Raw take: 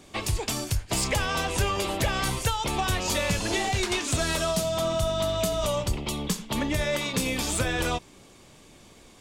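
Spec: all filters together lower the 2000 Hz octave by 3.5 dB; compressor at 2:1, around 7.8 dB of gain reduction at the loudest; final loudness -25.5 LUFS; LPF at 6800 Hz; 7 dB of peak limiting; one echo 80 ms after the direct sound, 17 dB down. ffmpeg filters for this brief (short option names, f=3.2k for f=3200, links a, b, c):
-af "lowpass=6.8k,equalizer=f=2k:t=o:g=-4.5,acompressor=threshold=-36dB:ratio=2,alimiter=level_in=4.5dB:limit=-24dB:level=0:latency=1,volume=-4.5dB,aecho=1:1:80:0.141,volume=11.5dB"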